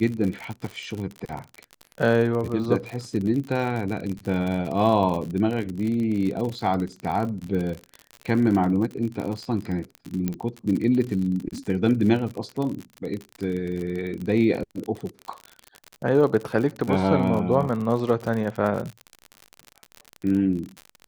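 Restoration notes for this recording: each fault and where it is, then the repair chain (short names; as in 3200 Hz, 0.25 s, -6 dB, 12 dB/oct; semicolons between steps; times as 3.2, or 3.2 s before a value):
crackle 52/s -28 dBFS
10.28 pop -13 dBFS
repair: de-click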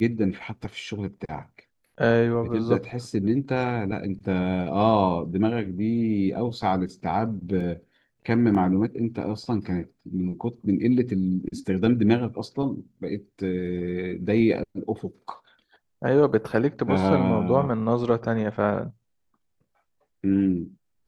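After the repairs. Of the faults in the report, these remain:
10.28 pop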